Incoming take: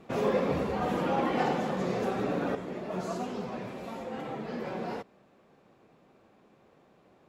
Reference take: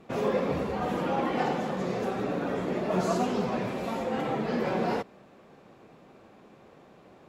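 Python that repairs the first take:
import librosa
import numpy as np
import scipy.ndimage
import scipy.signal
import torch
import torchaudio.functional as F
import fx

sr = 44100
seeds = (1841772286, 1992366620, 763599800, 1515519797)

y = fx.fix_declip(x, sr, threshold_db=-17.5)
y = fx.gain(y, sr, db=fx.steps((0.0, 0.0), (2.55, 7.5)))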